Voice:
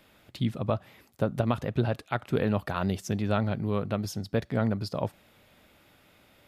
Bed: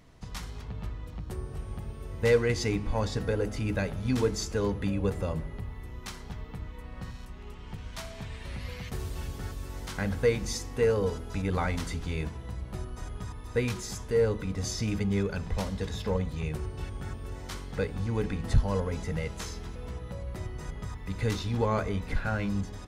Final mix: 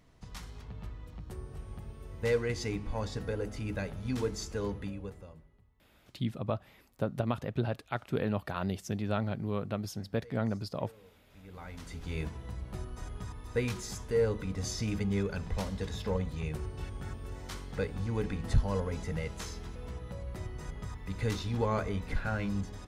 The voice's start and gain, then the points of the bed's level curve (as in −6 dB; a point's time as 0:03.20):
5.80 s, −5.0 dB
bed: 0:04.75 −6 dB
0:05.72 −30 dB
0:11.14 −30 dB
0:12.17 −3 dB